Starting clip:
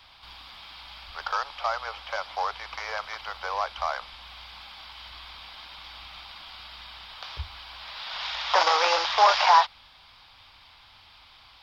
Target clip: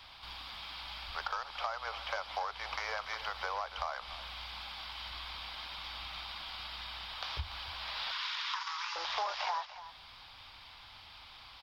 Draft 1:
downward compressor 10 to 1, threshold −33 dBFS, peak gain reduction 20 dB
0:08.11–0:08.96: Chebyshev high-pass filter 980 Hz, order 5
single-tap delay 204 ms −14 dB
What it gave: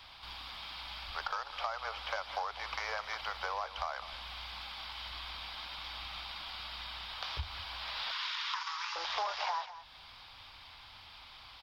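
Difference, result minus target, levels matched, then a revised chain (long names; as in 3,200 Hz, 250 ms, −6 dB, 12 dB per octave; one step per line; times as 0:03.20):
echo 85 ms early
downward compressor 10 to 1, threshold −33 dBFS, peak gain reduction 20 dB
0:08.11–0:08.96: Chebyshev high-pass filter 980 Hz, order 5
single-tap delay 289 ms −14 dB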